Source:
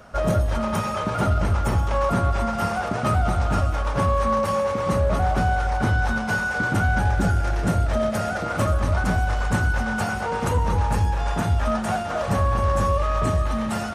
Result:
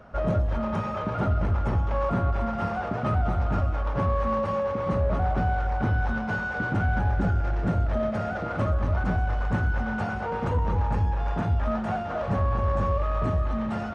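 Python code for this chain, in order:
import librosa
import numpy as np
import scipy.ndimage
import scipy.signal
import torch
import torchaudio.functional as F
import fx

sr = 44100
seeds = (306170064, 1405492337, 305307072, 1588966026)

p1 = fx.spacing_loss(x, sr, db_at_10k=27)
p2 = 10.0 ** (-28.0 / 20.0) * np.tanh(p1 / 10.0 ** (-28.0 / 20.0))
p3 = p1 + (p2 * librosa.db_to_amplitude(-7.0))
y = p3 * librosa.db_to_amplitude(-4.0)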